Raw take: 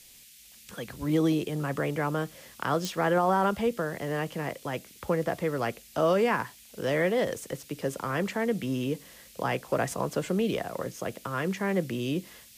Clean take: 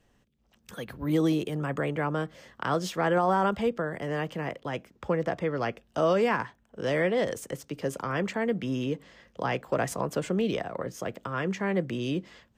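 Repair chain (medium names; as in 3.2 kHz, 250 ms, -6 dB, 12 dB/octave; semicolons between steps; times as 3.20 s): de-click; noise print and reduce 10 dB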